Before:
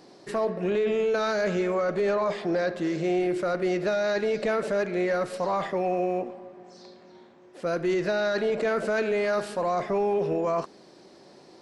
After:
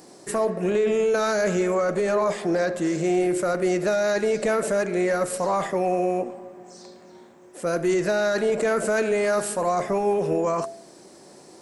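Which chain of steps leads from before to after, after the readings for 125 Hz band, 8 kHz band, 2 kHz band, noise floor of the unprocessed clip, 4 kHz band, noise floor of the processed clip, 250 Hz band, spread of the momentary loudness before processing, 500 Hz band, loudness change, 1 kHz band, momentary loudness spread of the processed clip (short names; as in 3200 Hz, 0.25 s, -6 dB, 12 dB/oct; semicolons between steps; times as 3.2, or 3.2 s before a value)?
+3.5 dB, n/a, +2.5 dB, -53 dBFS, +1.5 dB, -49 dBFS, +3.5 dB, 4 LU, +3.0 dB, +3.0 dB, +3.0 dB, 4 LU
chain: resonant high shelf 6000 Hz +12 dB, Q 1.5; de-hum 134.5 Hz, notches 5; gain +3.5 dB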